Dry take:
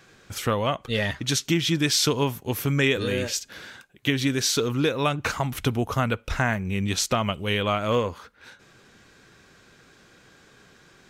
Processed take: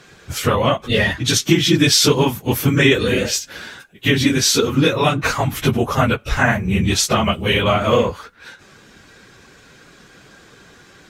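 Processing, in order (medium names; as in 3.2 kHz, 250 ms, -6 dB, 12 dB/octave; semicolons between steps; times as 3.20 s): phase randomisation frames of 50 ms; trim +8 dB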